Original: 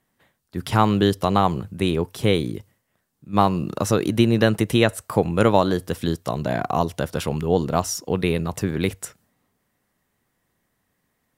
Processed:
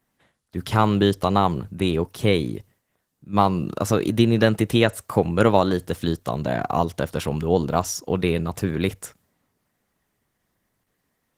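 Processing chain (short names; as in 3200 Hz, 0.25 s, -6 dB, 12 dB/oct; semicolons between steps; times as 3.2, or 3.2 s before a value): Opus 16 kbps 48000 Hz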